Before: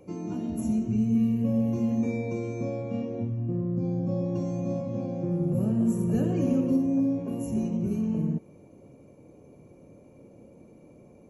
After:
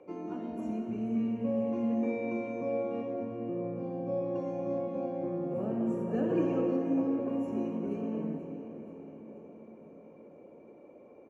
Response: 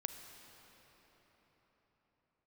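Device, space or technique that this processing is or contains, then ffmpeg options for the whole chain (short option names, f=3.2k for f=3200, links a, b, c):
cathedral: -filter_complex "[1:a]atrim=start_sample=2205[a];[0:a][a]afir=irnorm=-1:irlink=0,lowpass=8.4k,acrossover=split=300 2700:gain=0.0891 1 0.1[b][c][d];[b][c][d]amix=inputs=3:normalize=0,asettb=1/sr,asplit=3[e][f][g];[e]atrim=end=6.294[h];[f]atrim=start=6.29:end=7.2,asetpts=PTS-STARTPTS,afade=t=in:d=0.004:c=qsin,afade=t=out:st=0.906:d=0.004:c=qsin,aecho=1:1:6.2:0.8,atrim=end_sample=40131[i];[g]atrim=start=7.196[j];[h][i]acrossfade=d=0.004:c1=hsin:c2=qsin[k];[k][j]acrossfade=d=0.004:c1=qsin:c2=hsin,aecho=1:1:481|962|1443|1924|2405|2886:0.2|0.114|0.0648|0.037|0.0211|0.012,volume=3.5dB"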